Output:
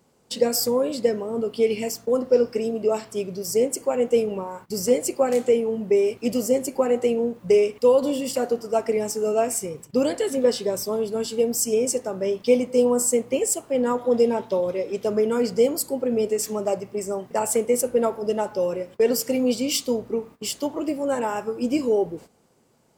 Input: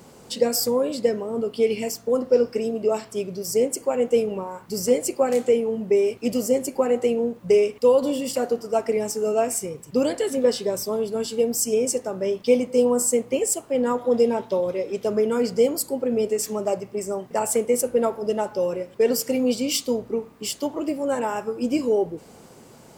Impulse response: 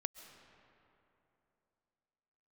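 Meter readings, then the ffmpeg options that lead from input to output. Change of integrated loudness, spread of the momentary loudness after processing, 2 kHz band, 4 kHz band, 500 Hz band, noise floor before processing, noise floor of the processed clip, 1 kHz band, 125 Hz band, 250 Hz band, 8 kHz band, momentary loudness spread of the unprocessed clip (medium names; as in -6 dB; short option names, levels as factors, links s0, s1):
0.0 dB, 7 LU, 0.0 dB, 0.0 dB, 0.0 dB, -48 dBFS, -55 dBFS, 0.0 dB, 0.0 dB, 0.0 dB, 0.0 dB, 7 LU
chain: -af "agate=range=0.178:threshold=0.00891:ratio=16:detection=peak"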